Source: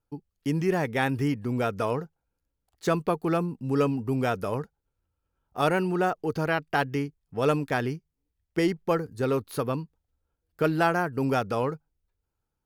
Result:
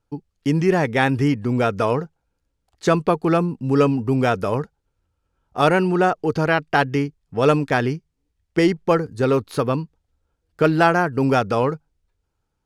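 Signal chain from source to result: LPF 8300 Hz 12 dB/oct; gain +7.5 dB

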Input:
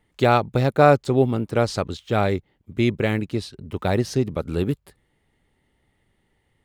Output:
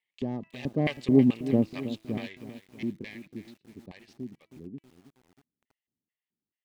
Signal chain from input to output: self-modulated delay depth 0.2 ms; Doppler pass-by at 1.37, 9 m/s, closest 2.7 m; HPF 49 Hz 6 dB/oct; tone controls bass +5 dB, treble +7 dB; de-hum 327.9 Hz, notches 9; LFO band-pass square 2.3 Hz 250–2500 Hz; Butterworth band-stop 1400 Hz, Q 3.6; thin delay 0.111 s, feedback 51%, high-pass 4300 Hz, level -22 dB; lo-fi delay 0.32 s, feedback 55%, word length 9-bit, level -12.5 dB; gain +4 dB

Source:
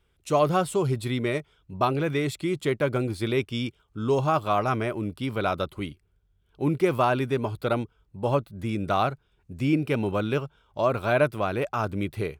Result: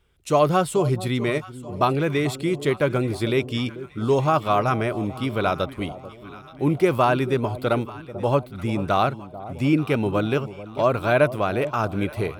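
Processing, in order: echo with dull and thin repeats by turns 0.439 s, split 890 Hz, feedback 67%, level -14 dB; gain +3.5 dB

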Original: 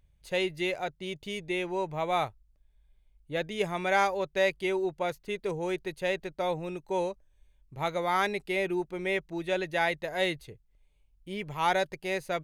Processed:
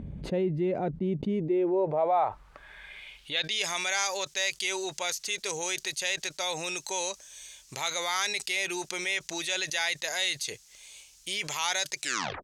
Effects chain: tape stop at the end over 0.47 s; band-pass sweep 230 Hz -> 6300 Hz, 1.27–3.75; fast leveller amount 70%; gain +4 dB

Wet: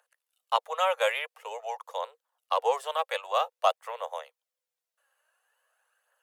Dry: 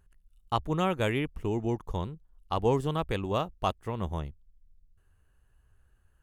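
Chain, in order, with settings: wow and flutter 27 cents; phaser 0.49 Hz, delay 3.8 ms, feedback 40%; steep high-pass 490 Hz 96 dB/oct; gain +4 dB

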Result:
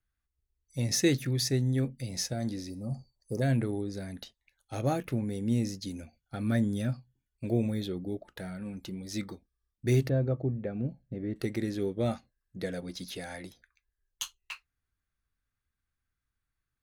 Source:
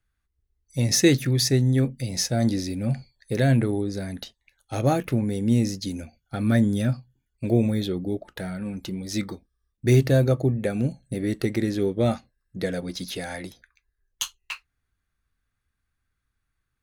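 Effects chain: 10.09–11.36 tape spacing loss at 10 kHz 40 dB; 2.7–3.42 spectral gain 1300–4500 Hz -26 dB; 2.33–2.92 resonator 70 Hz, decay 0.45 s, harmonics all, mix 40%; gain -7.5 dB

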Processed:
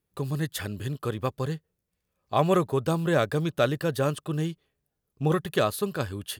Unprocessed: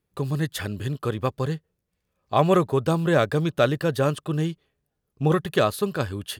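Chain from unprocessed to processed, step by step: high shelf 8000 Hz +6 dB; gain -3.5 dB

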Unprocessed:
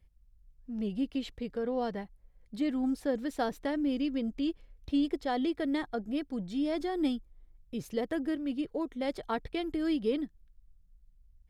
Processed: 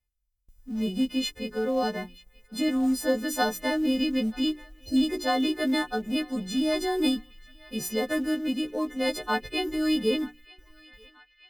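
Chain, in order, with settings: frequency quantiser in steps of 3 st; notches 60/120/180/240/300/360/420 Hz; gate with hold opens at -53 dBFS; harmonic-percussive split harmonic +4 dB; in parallel at -11 dB: short-mantissa float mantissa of 2-bit; on the sum: spectral delete 4.66–4.96, 870–4000 Hz; on a send: narrowing echo 0.933 s, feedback 74%, band-pass 2400 Hz, level -20 dB

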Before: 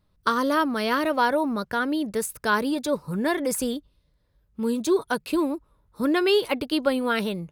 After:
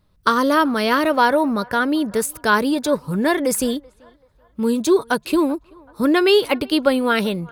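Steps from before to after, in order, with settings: narrowing echo 0.383 s, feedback 48%, band-pass 980 Hz, level -23.5 dB; gain +6 dB

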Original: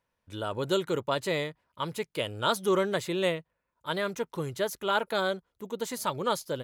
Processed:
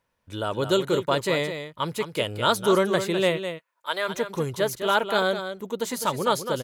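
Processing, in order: 3.37–4.08 HPF 1200 Hz -> 500 Hz 12 dB/oct; on a send: echo 0.206 s -9 dB; on the sum: gain +5 dB

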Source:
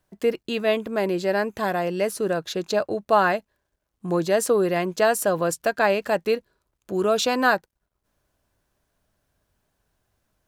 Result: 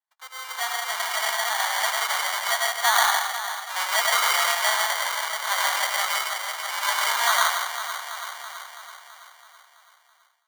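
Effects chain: half-waves squared off; Doppler pass-by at 4.39, 31 m/s, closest 19 m; echo with dull and thin repeats by turns 0.165 s, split 2400 Hz, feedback 77%, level -5.5 dB; reverb RT60 0.60 s, pre-delay 93 ms, DRR 0.5 dB; sample-and-hold 17×; AGC gain up to 15 dB; steep high-pass 830 Hz 36 dB/oct; gain -3.5 dB

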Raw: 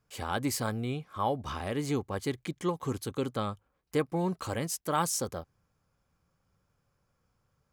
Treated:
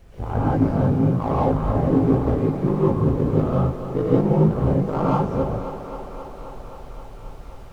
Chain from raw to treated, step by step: LPF 1000 Hz 12 dB/oct; tilt -2.5 dB/oct; in parallel at -4.5 dB: overloaded stage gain 31 dB; on the sum: ring modulator 26 Hz; added noise brown -48 dBFS; on a send: thinning echo 0.265 s, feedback 81%, high-pass 190 Hz, level -10 dB; on the sum: non-linear reverb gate 0.21 s rising, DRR -7 dB; gain +1.5 dB

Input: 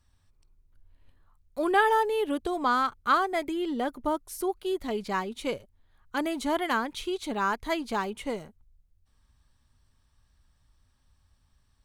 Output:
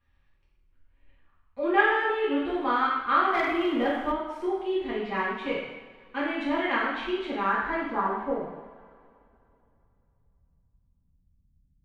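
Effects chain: low-pass sweep 2400 Hz -> 180 Hz, 7.36–9.7; two-slope reverb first 0.96 s, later 3 s, from -19 dB, DRR -8 dB; 3.33–4.12 sample leveller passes 1; gain -9 dB

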